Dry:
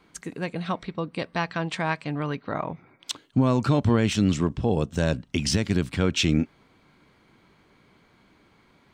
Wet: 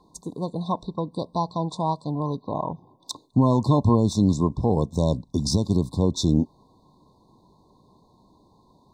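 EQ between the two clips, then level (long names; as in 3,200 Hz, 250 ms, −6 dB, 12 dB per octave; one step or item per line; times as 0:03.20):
linear-phase brick-wall band-stop 1,100–3,500 Hz
low-shelf EQ 360 Hz +4.5 dB
parametric band 1,300 Hz +12.5 dB 0.9 octaves
−1.5 dB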